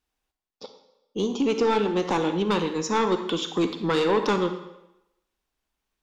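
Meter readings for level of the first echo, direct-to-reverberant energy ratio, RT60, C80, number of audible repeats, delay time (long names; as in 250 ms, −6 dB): no echo audible, 8.0 dB, 0.90 s, 11.0 dB, no echo audible, no echo audible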